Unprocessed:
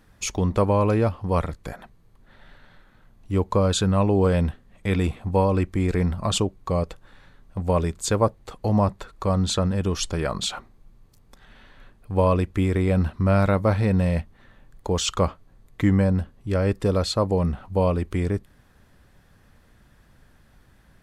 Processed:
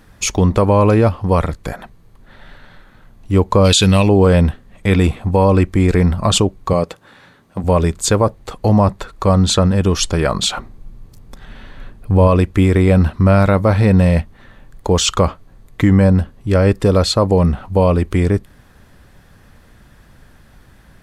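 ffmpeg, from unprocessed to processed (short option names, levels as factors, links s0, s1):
-filter_complex "[0:a]asplit=3[s0][s1][s2];[s0]afade=t=out:st=3.64:d=0.02[s3];[s1]highshelf=f=1900:t=q:w=1.5:g=11.5,afade=t=in:st=3.64:d=0.02,afade=t=out:st=4.07:d=0.02[s4];[s2]afade=t=in:st=4.07:d=0.02[s5];[s3][s4][s5]amix=inputs=3:normalize=0,asettb=1/sr,asplit=3[s6][s7][s8];[s6]atrim=end=6.734[s9];[s7]atrim=start=6.73:end=7.64,asetpts=PTS-STARTPTS,afade=t=in:d=0.004:c=qsin,afade=t=out:st=0.906:d=0.004:c=qsin,highpass=150[s10];[s8]atrim=start=7.636[s11];[s9][s10]acrossfade=d=0.004:c1=hsin:c2=qsin[s12];[s12][s11]acrossfade=d=0.004:c1=qsin:c2=hsin,asettb=1/sr,asplit=3[s13][s14][s15];[s13]atrim=end=10.574[s16];[s14]atrim=start=10.57:end=12.28,asetpts=PTS-STARTPTS,afade=t=in:d=0.004:c=qsin,afade=t=out:st=1.706:d=0.004:c=qsin,lowshelf=f=390:g=6.5[s17];[s15]atrim=start=12.276[s18];[s16][s17]acrossfade=d=0.004:c1=hsin:c2=qsin[s19];[s19][s18]acrossfade=d=0.004:c1=qsin:c2=hsin,alimiter=level_in=3.98:limit=0.891:release=50:level=0:latency=1,volume=0.75"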